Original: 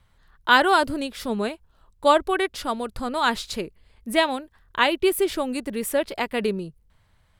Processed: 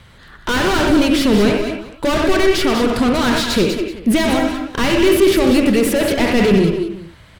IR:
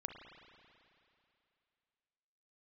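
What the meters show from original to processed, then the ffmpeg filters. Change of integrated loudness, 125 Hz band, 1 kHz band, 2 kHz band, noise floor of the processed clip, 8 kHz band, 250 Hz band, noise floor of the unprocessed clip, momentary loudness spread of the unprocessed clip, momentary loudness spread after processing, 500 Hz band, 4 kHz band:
+8.0 dB, +18.0 dB, +0.5 dB, +4.0 dB, -44 dBFS, +9.5 dB, +14.5 dB, -62 dBFS, 14 LU, 8 LU, +8.5 dB, +7.0 dB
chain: -filter_complex "[1:a]atrim=start_sample=2205,atrim=end_sample=3528,asetrate=35280,aresample=44100[a];[0:a][a]afir=irnorm=-1:irlink=0,asplit=2[b][c];[c]highpass=f=720:p=1,volume=37dB,asoftclip=type=tanh:threshold=-5dB[d];[b][d]amix=inputs=2:normalize=0,lowpass=f=1k:p=1,volume=-6dB,equalizer=f=900:t=o:w=2.2:g=-15,aecho=1:1:121|192|195|379:0.224|0.335|0.335|0.106,volume=7dB"

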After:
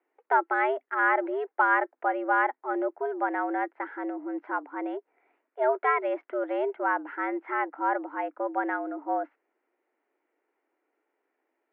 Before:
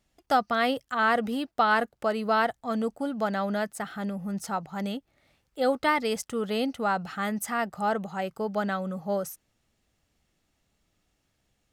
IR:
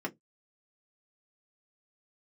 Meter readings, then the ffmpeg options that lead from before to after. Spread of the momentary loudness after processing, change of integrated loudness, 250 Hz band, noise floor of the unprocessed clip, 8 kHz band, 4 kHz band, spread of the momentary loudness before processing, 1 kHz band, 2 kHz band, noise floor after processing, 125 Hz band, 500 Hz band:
10 LU, 0.0 dB, -3.5 dB, -75 dBFS, under -35 dB, under -15 dB, 9 LU, +1.0 dB, +2.0 dB, -81 dBFS, under -40 dB, -0.5 dB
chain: -af "highpass=f=180:t=q:w=0.5412,highpass=f=180:t=q:w=1.307,lowpass=f=2.1k:t=q:w=0.5176,lowpass=f=2.1k:t=q:w=0.7071,lowpass=f=2.1k:t=q:w=1.932,afreqshift=130"

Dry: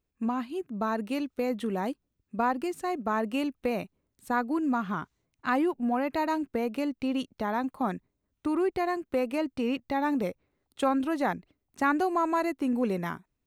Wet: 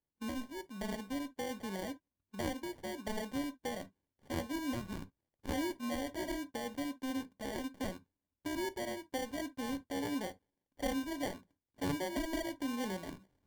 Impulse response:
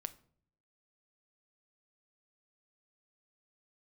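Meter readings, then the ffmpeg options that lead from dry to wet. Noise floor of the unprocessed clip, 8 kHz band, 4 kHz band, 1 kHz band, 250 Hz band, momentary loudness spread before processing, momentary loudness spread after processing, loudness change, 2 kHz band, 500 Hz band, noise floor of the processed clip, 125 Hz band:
-82 dBFS, n/a, -1.0 dB, -14.0 dB, -9.5 dB, 8 LU, 8 LU, -10.0 dB, -9.0 dB, -10.5 dB, under -85 dBFS, -4.5 dB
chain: -filter_complex "[0:a]aeval=exprs='if(lt(val(0),0),0.447*val(0),val(0))':c=same,highpass=70,areverse,acompressor=mode=upward:threshold=-52dB:ratio=2.5,areverse,acrusher=samples=34:mix=1:aa=0.000001[a];[1:a]atrim=start_sample=2205,afade=t=out:st=0.18:d=0.01,atrim=end_sample=8379,asetrate=79380,aresample=44100[b];[a][b]afir=irnorm=-1:irlink=0"

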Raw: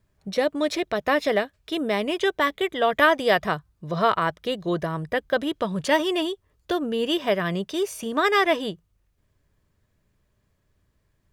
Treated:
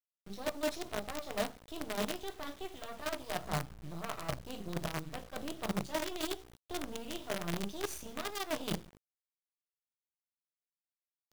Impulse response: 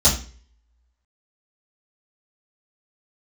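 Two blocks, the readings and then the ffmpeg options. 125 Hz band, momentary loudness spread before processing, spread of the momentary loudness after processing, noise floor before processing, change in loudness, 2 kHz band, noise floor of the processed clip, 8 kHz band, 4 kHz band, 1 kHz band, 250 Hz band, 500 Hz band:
-8.5 dB, 10 LU, 8 LU, -70 dBFS, -15.5 dB, -18.0 dB, under -85 dBFS, -3.5 dB, -13.0 dB, -17.0 dB, -14.0 dB, -16.5 dB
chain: -filter_complex "[0:a]aresample=32000,aresample=44100,agate=range=-7dB:threshold=-58dB:ratio=16:detection=peak,areverse,acompressor=threshold=-33dB:ratio=20,areverse,equalizer=f=125:t=o:w=1:g=6,equalizer=f=250:t=o:w=1:g=-6,equalizer=f=2k:t=o:w=1:g=-10,equalizer=f=8k:t=o:w=1:g=-4,asplit=2[a][b];[1:a]atrim=start_sample=2205,afade=t=out:st=0.37:d=0.01,atrim=end_sample=16758,highshelf=f=4.9k:g=5.5[c];[b][c]afir=irnorm=-1:irlink=0,volume=-22dB[d];[a][d]amix=inputs=2:normalize=0,acrusher=bits=6:dc=4:mix=0:aa=0.000001"

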